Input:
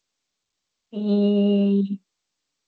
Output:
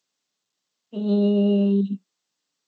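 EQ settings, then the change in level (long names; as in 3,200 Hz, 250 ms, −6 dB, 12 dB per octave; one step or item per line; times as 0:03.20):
high-pass filter 130 Hz 24 dB per octave
notch filter 2,300 Hz, Q 14
dynamic equaliser 2,100 Hz, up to −4 dB, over −43 dBFS, Q 0.87
0.0 dB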